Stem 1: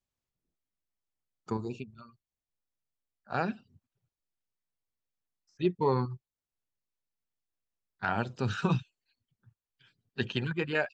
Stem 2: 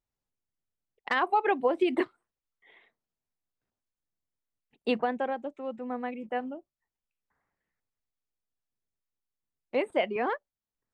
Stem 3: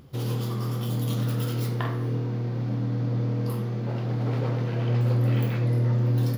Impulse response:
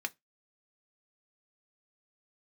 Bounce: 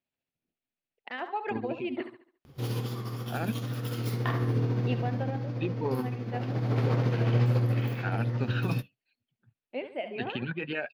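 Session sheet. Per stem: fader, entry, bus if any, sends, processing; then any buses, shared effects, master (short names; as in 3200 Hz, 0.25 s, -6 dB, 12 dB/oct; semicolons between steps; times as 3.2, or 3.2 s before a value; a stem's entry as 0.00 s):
+0.5 dB, 0.00 s, bus A, send -13 dB, no echo send, dry
-5.5 dB, 0.00 s, bus A, no send, echo send -12 dB, dry
+1.0 dB, 2.45 s, no bus, send -9.5 dB, no echo send, auto duck -10 dB, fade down 0.65 s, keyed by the first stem
bus A: 0.0 dB, speaker cabinet 110–4700 Hz, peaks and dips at 250 Hz +5 dB, 660 Hz +5 dB, 1100 Hz -9 dB, 2600 Hz +6 dB; limiter -23 dBFS, peak gain reduction 10.5 dB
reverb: on, RT60 0.15 s, pre-delay 3 ms
echo: feedback echo 70 ms, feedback 39%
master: wow and flutter 23 cents; tremolo 14 Hz, depth 39%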